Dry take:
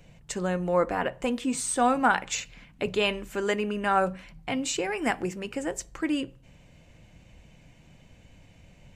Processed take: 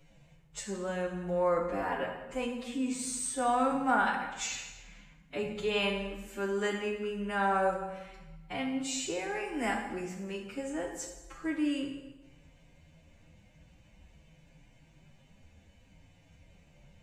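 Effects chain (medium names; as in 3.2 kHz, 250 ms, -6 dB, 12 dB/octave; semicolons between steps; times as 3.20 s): time stretch by phase-locked vocoder 1.9×; plate-style reverb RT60 1.1 s, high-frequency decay 0.85×, DRR 2 dB; trim -7 dB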